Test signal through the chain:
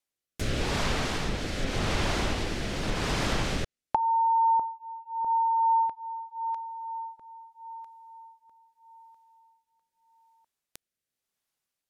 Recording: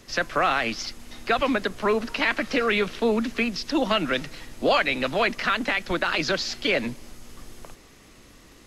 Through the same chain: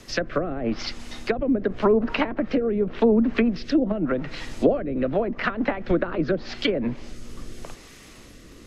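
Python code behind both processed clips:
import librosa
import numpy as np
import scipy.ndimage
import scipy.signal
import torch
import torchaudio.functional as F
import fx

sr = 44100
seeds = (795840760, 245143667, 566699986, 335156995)

y = fx.env_lowpass_down(x, sr, base_hz=450.0, full_db=-19.0)
y = fx.rotary(y, sr, hz=0.85)
y = y * librosa.db_to_amplitude(7.0)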